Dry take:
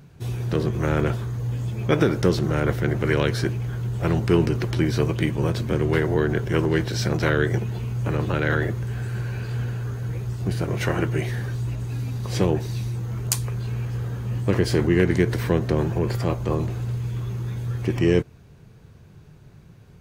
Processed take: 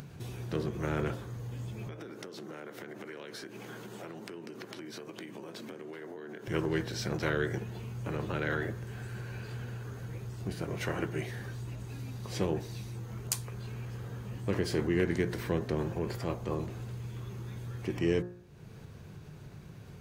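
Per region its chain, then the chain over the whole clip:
1.87–6.48 HPF 200 Hz 24 dB/oct + compressor 10:1, threshold -35 dBFS
whole clip: low shelf 74 Hz -7 dB; de-hum 59.15 Hz, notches 31; upward compressor, threshold -28 dBFS; gain -8.5 dB

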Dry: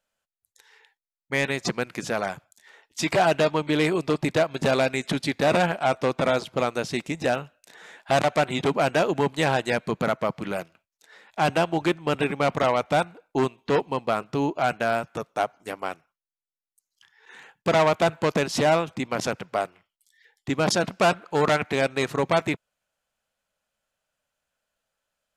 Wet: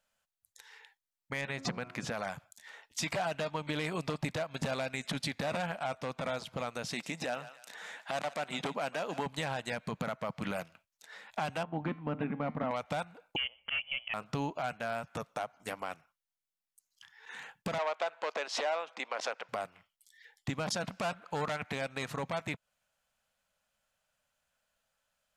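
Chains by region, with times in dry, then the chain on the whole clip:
1.41–2.12 LPF 2900 Hz 6 dB/oct + de-hum 90.29 Hz, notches 16
6.88–9.26 HPF 210 Hz + thinning echo 0.147 s, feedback 33%, high-pass 950 Hz, level -18.5 dB
11.63–12.71 LPF 1700 Hz + bell 240 Hz +14.5 dB 0.61 oct + resonator 150 Hz, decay 0.35 s, mix 50%
13.36–14.14 auto swell 0.116 s + inverted band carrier 3200 Hz
17.78–19.49 HPF 420 Hz 24 dB/oct + air absorption 99 m
whole clip: bell 360 Hz -10.5 dB 0.61 oct; compressor, threshold -31 dBFS; limiter -24 dBFS; gain +1 dB

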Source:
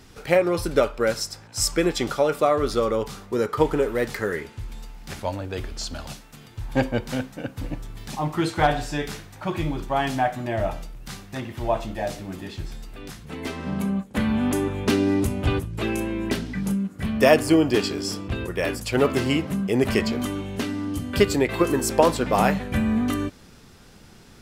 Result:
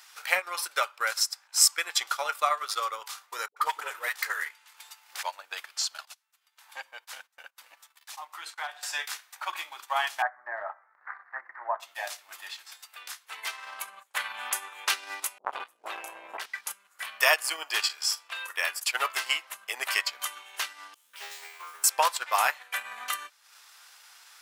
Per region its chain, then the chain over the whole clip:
3.48–5.23 hard clip -8.5 dBFS + dispersion highs, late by 84 ms, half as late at 420 Hz
6.05–8.83 gate -36 dBFS, range -18 dB + compressor 1.5:1, threshold -48 dBFS
10.22–11.8 steep low-pass 1900 Hz 72 dB/oct + mismatched tape noise reduction encoder only
15.38–16.46 tilt shelf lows +9 dB, about 920 Hz + dispersion highs, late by 86 ms, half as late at 460 Hz + core saturation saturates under 530 Hz
17.85–18.57 low shelf 270 Hz -12 dB + doubler 42 ms -8 dB
20.94–21.84 resonator 81 Hz, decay 1 s, mix 100% + careless resampling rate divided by 2×, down none, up hold + Doppler distortion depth 0.32 ms
whole clip: HPF 950 Hz 24 dB/oct; high shelf 10000 Hz +6.5 dB; transient shaper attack +2 dB, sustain -10 dB; gain +1 dB

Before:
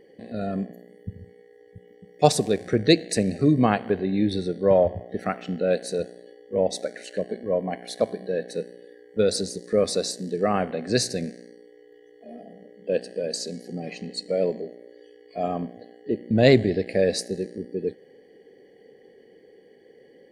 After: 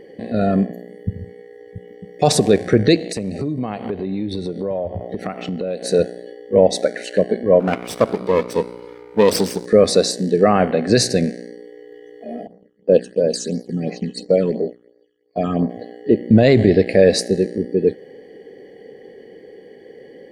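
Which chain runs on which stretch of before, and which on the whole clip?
2.96–5.85 bell 1600 Hz -8.5 dB 0.41 oct + compressor 5:1, threshold -33 dBFS
7.6–9.66 minimum comb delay 0.37 ms + Bessel high-pass 150 Hz
12.47–15.7 expander -37 dBFS + phaser stages 8, 2.9 Hz, lowest notch 610–3100 Hz
whole clip: high shelf 4200 Hz -6 dB; maximiser +12.5 dB; gain -1 dB

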